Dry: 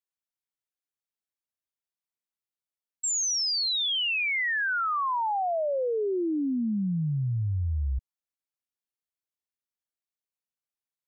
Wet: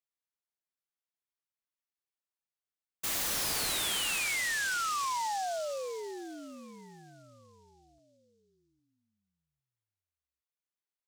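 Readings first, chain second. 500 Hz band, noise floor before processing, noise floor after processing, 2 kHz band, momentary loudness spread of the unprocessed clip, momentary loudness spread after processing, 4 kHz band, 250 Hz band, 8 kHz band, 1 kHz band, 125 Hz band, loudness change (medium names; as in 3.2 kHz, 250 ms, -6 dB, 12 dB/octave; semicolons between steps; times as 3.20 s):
-9.5 dB, under -85 dBFS, under -85 dBFS, -5.5 dB, 6 LU, 16 LU, -7.0 dB, -18.0 dB, no reading, -5.5 dB, -24.5 dB, -4.5 dB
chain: high-pass 640 Hz 12 dB/octave; feedback delay 808 ms, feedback 40%, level -17.5 dB; delay time shaken by noise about 5.2 kHz, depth 0.051 ms; trim -4.5 dB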